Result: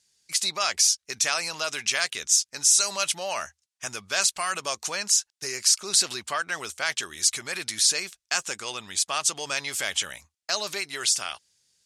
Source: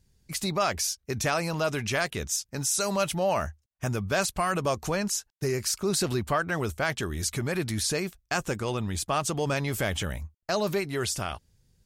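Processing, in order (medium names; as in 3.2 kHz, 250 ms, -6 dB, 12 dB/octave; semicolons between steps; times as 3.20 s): frequency weighting ITU-R 468; trim -2.5 dB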